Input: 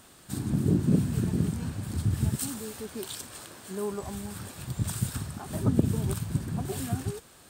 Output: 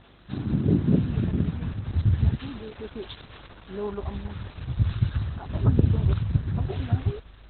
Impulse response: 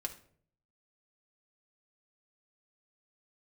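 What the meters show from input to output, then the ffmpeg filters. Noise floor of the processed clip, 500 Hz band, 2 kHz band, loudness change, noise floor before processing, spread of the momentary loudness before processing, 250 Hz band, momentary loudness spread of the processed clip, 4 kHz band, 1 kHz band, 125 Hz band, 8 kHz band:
-50 dBFS, +1.5 dB, +1.0 dB, +4.0 dB, -54 dBFS, 12 LU, +1.0 dB, 16 LU, -1.5 dB, +1.0 dB, +5.0 dB, under -40 dB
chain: -af "aeval=exprs='val(0)+0.00112*(sin(2*PI*50*n/s)+sin(2*PI*2*50*n/s)/2+sin(2*PI*3*50*n/s)/3+sin(2*PI*4*50*n/s)/4+sin(2*PI*5*50*n/s)/5)':c=same,asubboost=boost=6:cutoff=75,volume=3.5dB" -ar 48000 -c:a libopus -b:a 8k

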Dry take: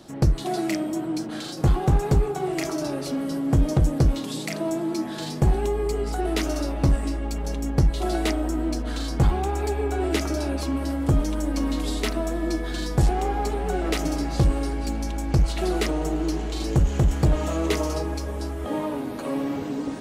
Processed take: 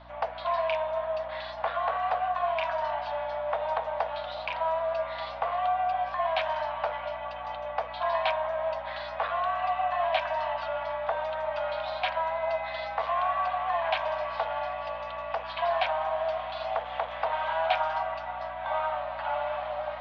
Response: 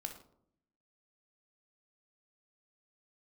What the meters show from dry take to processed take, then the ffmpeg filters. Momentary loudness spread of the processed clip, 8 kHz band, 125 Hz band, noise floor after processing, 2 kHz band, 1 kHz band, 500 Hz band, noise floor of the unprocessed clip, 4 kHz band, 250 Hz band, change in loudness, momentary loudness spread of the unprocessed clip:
7 LU, under -30 dB, -28.0 dB, -38 dBFS, +1.5 dB, +5.0 dB, -1.5 dB, -32 dBFS, -4.0 dB, -32.5 dB, -5.0 dB, 7 LU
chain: -af "highpass=f=320:t=q:w=0.5412,highpass=f=320:t=q:w=1.307,lowpass=f=3.3k:t=q:w=0.5176,lowpass=f=3.3k:t=q:w=0.7071,lowpass=f=3.3k:t=q:w=1.932,afreqshift=320,aeval=exprs='val(0)+0.00251*(sin(2*PI*60*n/s)+sin(2*PI*2*60*n/s)/2+sin(2*PI*3*60*n/s)/3+sin(2*PI*4*60*n/s)/4+sin(2*PI*5*60*n/s)/5)':c=same"

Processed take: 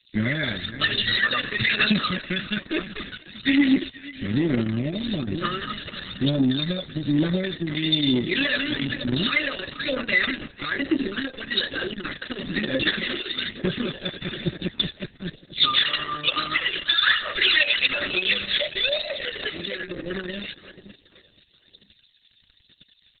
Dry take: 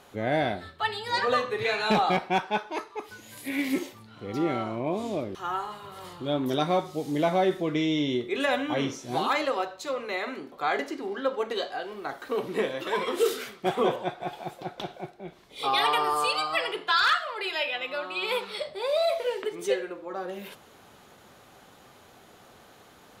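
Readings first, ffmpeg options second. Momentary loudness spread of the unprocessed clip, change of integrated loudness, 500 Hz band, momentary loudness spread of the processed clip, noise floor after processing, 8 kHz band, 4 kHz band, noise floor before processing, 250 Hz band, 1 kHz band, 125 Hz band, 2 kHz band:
14 LU, +4.5 dB, -4.0 dB, 12 LU, -60 dBFS, under -35 dB, +10.0 dB, -54 dBFS, +6.5 dB, -7.0 dB, +9.0 dB, +7.5 dB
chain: -filter_complex "[0:a]highpass=140,acrossover=split=4100[a][b];[a]aeval=exprs='sgn(val(0))*max(abs(val(0))-0.00422,0)':c=same[c];[c][b]amix=inputs=2:normalize=0,asplit=2[d][e];[e]adelay=479,lowpass=f=4.5k:p=1,volume=-20dB,asplit=2[f][g];[g]adelay=479,lowpass=f=4.5k:p=1,volume=0.42,asplit=2[h][i];[i]adelay=479,lowpass=f=4.5k:p=1,volume=0.42[j];[d][f][h][j]amix=inputs=4:normalize=0,asplit=2[k][l];[l]alimiter=limit=-18.5dB:level=0:latency=1:release=355,volume=-1dB[m];[k][m]amix=inputs=2:normalize=0,acompressor=threshold=-25dB:ratio=8,asuperstop=centerf=860:order=20:qfactor=1.4,highshelf=f=6.6k:g=-7.5,aecho=1:1:1.1:0.92,aphaser=in_gain=1:out_gain=1:delay=1.5:decay=0.51:speed=1.1:type=triangular,equalizer=f=3.5k:w=5.6:g=5.5,asoftclip=type=tanh:threshold=-17dB,volume=7.5dB" -ar 48000 -c:a libopus -b:a 6k

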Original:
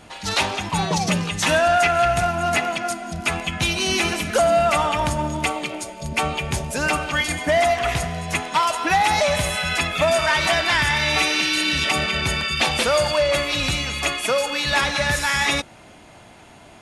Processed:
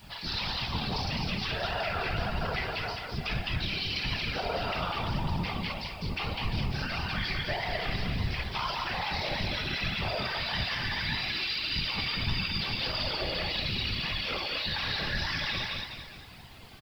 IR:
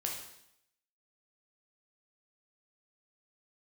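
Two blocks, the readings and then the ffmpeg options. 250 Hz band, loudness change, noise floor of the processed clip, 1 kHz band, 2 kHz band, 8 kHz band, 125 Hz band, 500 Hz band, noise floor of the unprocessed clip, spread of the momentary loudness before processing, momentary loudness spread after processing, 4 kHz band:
-10.0 dB, -11.0 dB, -46 dBFS, -14.0 dB, -11.5 dB, -25.5 dB, -5.5 dB, -17.0 dB, -46 dBFS, 7 LU, 4 LU, -7.5 dB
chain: -filter_complex "[0:a]equalizer=f=300:w=0.91:g=-12,asplit=2[a][b];[b]acompressor=threshold=-33dB:ratio=6,volume=1dB[c];[a][c]amix=inputs=2:normalize=0[d];[1:a]atrim=start_sample=2205,atrim=end_sample=3087[e];[d][e]afir=irnorm=-1:irlink=0,aresample=11025,aresample=44100,tremolo=f=230:d=0.824,highpass=f=69:w=0.5412,highpass=f=69:w=1.3066,bass=f=250:g=13,treble=f=4k:g=14,asplit=2[f][g];[g]aecho=0:1:207|414|621|828|1035:0.501|0.21|0.0884|0.0371|0.0156[h];[f][h]amix=inputs=2:normalize=0,alimiter=limit=-12.5dB:level=0:latency=1:release=12,afftfilt=real='hypot(re,im)*cos(2*PI*random(0))':imag='hypot(re,im)*sin(2*PI*random(1))':win_size=512:overlap=0.75,acrusher=bits=8:mix=0:aa=0.000001,flanger=delay=1:depth=1.6:regen=64:speed=1.7:shape=sinusoidal"

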